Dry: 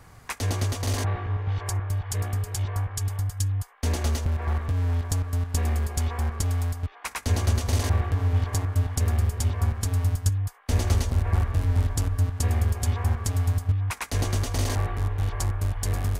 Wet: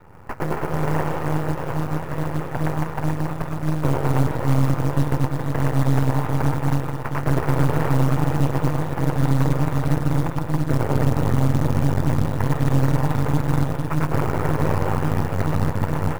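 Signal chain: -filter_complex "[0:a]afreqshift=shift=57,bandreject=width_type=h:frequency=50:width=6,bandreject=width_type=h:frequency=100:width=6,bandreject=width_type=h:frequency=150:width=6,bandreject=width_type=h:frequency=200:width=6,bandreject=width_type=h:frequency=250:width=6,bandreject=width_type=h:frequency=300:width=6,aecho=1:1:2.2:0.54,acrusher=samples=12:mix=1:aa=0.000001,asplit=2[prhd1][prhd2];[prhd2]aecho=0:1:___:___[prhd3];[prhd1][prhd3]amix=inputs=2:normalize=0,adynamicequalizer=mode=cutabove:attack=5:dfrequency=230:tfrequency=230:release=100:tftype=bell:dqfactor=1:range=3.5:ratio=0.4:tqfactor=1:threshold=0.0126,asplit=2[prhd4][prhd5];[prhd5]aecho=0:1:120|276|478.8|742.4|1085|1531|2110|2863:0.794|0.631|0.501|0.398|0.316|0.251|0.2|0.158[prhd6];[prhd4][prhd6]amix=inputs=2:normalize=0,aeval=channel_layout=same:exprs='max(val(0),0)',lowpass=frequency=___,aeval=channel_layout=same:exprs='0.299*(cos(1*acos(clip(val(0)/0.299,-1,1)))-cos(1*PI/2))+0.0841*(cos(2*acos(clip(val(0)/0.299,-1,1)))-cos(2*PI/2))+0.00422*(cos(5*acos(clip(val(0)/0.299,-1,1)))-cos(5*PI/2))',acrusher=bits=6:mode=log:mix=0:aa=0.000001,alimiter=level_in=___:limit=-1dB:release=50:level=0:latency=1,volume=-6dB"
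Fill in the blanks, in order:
381, 0.112, 1.3k, 13.5dB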